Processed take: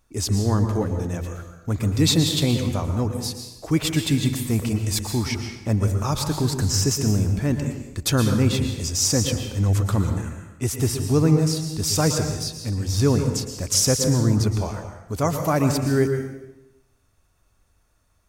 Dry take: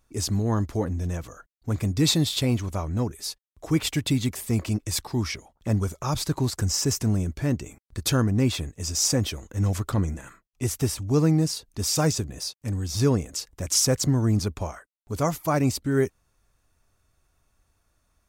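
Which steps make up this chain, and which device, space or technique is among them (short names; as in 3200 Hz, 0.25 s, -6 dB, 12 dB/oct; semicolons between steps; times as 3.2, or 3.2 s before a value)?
bathroom (reverb RT60 0.95 s, pre-delay 0.11 s, DRR 5 dB); gain +2 dB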